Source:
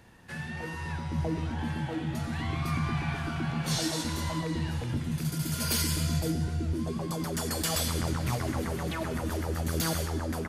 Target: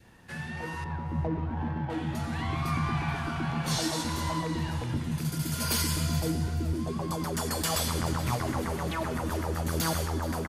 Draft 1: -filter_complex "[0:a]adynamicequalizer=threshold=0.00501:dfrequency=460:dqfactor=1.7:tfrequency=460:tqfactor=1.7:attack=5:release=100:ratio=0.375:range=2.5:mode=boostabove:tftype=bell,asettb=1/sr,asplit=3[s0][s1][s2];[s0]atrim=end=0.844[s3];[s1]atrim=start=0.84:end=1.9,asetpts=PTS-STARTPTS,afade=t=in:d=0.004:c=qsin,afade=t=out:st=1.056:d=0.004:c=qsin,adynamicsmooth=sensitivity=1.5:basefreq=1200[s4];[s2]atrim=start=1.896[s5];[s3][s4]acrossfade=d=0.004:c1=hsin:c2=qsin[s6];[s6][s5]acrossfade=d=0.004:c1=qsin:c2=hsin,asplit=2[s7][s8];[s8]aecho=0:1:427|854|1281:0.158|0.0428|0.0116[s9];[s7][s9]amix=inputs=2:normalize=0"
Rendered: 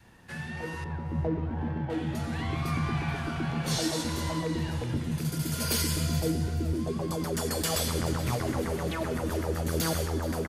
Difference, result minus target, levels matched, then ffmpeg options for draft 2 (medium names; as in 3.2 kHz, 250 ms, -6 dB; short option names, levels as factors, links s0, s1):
1 kHz band -3.5 dB
-filter_complex "[0:a]adynamicequalizer=threshold=0.00501:dfrequency=980:dqfactor=1.7:tfrequency=980:tqfactor=1.7:attack=5:release=100:ratio=0.375:range=2.5:mode=boostabove:tftype=bell,asettb=1/sr,asplit=3[s0][s1][s2];[s0]atrim=end=0.844[s3];[s1]atrim=start=0.84:end=1.9,asetpts=PTS-STARTPTS,afade=t=in:d=0.004:c=qsin,afade=t=out:st=1.056:d=0.004:c=qsin,adynamicsmooth=sensitivity=1.5:basefreq=1200[s4];[s2]atrim=start=1.896[s5];[s3][s4]acrossfade=d=0.004:c1=hsin:c2=qsin[s6];[s6][s5]acrossfade=d=0.004:c1=qsin:c2=hsin,asplit=2[s7][s8];[s8]aecho=0:1:427|854|1281:0.158|0.0428|0.0116[s9];[s7][s9]amix=inputs=2:normalize=0"